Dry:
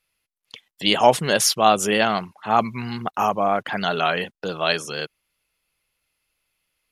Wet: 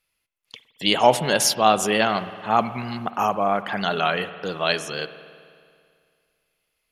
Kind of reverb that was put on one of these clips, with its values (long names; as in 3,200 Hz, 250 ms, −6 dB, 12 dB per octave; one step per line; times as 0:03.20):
spring reverb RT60 2.2 s, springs 55 ms, chirp 45 ms, DRR 13 dB
level −1 dB